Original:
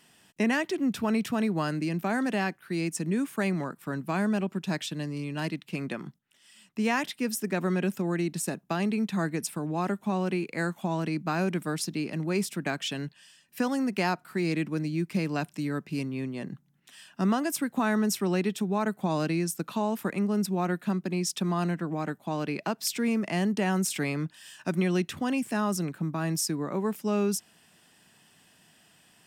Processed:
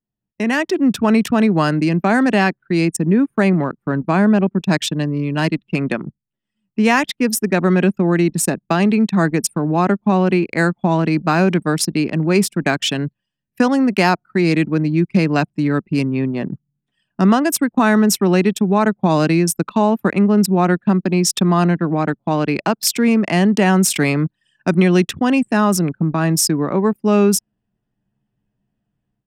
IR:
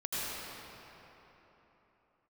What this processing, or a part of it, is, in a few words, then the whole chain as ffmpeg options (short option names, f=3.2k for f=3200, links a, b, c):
voice memo with heavy noise removal: -filter_complex "[0:a]asettb=1/sr,asplit=3[a][b][c];[a]atrim=end=2.854[d];[b]atrim=start=2.85:end=4.61,asetpts=PTS-STARTPTS,afade=t=in:d=0.004:c=qsin,afade=t=out:st=1.756:d=0.004:c=qsin,equalizer=f=4.9k:w=0.37:g=-4.5[e];[c]atrim=start=4.606[f];[d][e]acrossfade=d=0.004:c1=hsin:c2=qsin[g];[g][f]acrossfade=d=0.004:c1=qsin:c2=hsin,anlmdn=2.51,dynaudnorm=f=360:g=3:m=14dB"